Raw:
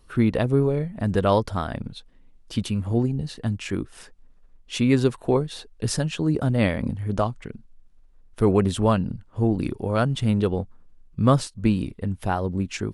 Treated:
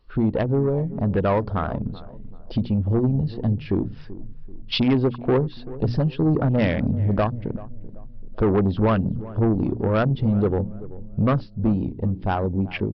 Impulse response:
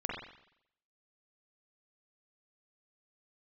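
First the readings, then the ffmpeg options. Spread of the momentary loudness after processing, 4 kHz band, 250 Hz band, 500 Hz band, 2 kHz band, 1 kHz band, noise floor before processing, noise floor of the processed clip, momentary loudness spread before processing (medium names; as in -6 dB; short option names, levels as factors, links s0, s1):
11 LU, 0.0 dB, +1.5 dB, +1.0 dB, 0.0 dB, 0.0 dB, -53 dBFS, -39 dBFS, 11 LU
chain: -filter_complex "[0:a]bandreject=f=60:t=h:w=6,bandreject=f=120:t=h:w=6,bandreject=f=180:t=h:w=6,bandreject=f=240:t=h:w=6,bandreject=f=300:t=h:w=6,afwtdn=0.0224,dynaudnorm=f=790:g=7:m=3.76,asplit=2[s0][s1];[s1]alimiter=limit=0.376:level=0:latency=1:release=419,volume=0.794[s2];[s0][s2]amix=inputs=2:normalize=0,acompressor=threshold=0.00891:ratio=1.5,aresample=11025,asoftclip=type=tanh:threshold=0.0944,aresample=44100,asplit=2[s3][s4];[s4]adelay=385,lowpass=f=810:p=1,volume=0.158,asplit=2[s5][s6];[s6]adelay=385,lowpass=f=810:p=1,volume=0.45,asplit=2[s7][s8];[s8]adelay=385,lowpass=f=810:p=1,volume=0.45,asplit=2[s9][s10];[s10]adelay=385,lowpass=f=810:p=1,volume=0.45[s11];[s3][s5][s7][s9][s11]amix=inputs=5:normalize=0,volume=2.24"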